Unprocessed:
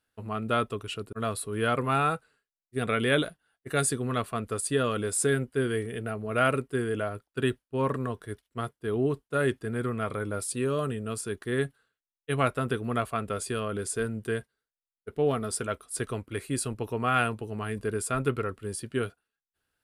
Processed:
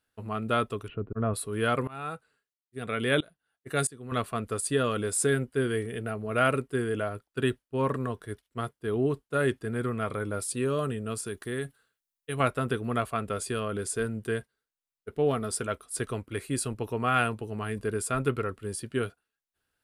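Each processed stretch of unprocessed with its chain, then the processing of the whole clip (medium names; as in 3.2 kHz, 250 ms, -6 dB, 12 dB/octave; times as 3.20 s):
0.88–1.34 s: Gaussian low-pass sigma 4 samples + tilt EQ -2 dB/octave
1.87–4.12 s: high-pass 45 Hz + tremolo saw up 1.5 Hz, depth 95%
11.26–12.40 s: treble shelf 6.6 kHz +8.5 dB + compression 2:1, threshold -32 dBFS
whole clip: none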